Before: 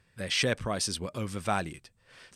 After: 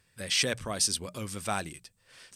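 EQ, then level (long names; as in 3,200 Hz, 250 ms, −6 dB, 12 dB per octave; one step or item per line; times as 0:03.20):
high-shelf EQ 4,200 Hz +12 dB
mains-hum notches 60/120/180 Hz
−3.5 dB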